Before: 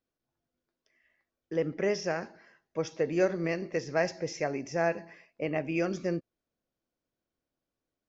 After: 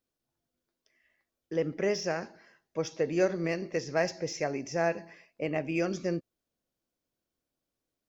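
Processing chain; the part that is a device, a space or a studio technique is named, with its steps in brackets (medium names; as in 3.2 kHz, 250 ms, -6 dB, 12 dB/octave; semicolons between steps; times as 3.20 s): exciter from parts (in parallel at -5 dB: high-pass 2.6 kHz 12 dB/octave + saturation -37 dBFS, distortion -14 dB)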